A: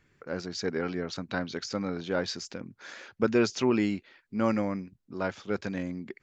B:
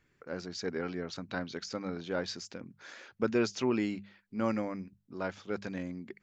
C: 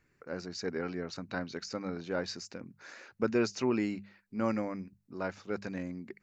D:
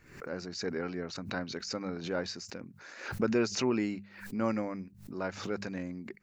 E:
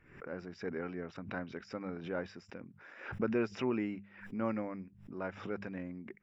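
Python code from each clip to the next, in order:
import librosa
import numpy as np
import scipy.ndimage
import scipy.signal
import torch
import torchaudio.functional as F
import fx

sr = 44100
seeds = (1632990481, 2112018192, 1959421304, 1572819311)

y1 = fx.hum_notches(x, sr, base_hz=50, count=4)
y1 = y1 * 10.0 ** (-4.5 / 20.0)
y2 = fx.peak_eq(y1, sr, hz=3300.0, db=-11.5, octaves=0.21)
y3 = fx.pre_swell(y2, sr, db_per_s=88.0)
y4 = scipy.signal.savgol_filter(y3, 25, 4, mode='constant')
y4 = y4 * 10.0 ** (-4.0 / 20.0)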